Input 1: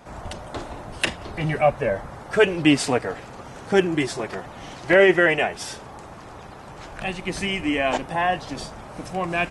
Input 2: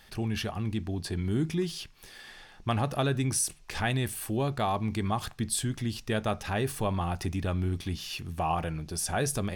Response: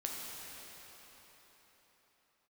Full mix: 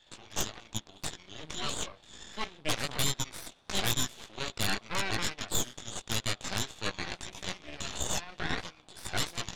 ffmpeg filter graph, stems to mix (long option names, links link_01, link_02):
-filter_complex "[0:a]flanger=delay=8.2:depth=8.7:regen=62:speed=0.22:shape=sinusoidal,volume=-17.5dB[link_01];[1:a]highpass=550,flanger=delay=16.5:depth=3.2:speed=1.6,lowpass=frequency=3600:width_type=q:width=6.6,volume=-3.5dB,asplit=2[link_02][link_03];[link_03]volume=-22dB[link_04];[2:a]atrim=start_sample=2205[link_05];[link_04][link_05]afir=irnorm=-1:irlink=0[link_06];[link_01][link_02][link_06]amix=inputs=3:normalize=0,aeval=exprs='0.158*(cos(1*acos(clip(val(0)/0.158,-1,1)))-cos(1*PI/2))+0.0316*(cos(3*acos(clip(val(0)/0.158,-1,1)))-cos(3*PI/2))+0.0501*(cos(8*acos(clip(val(0)/0.158,-1,1)))-cos(8*PI/2))':channel_layout=same"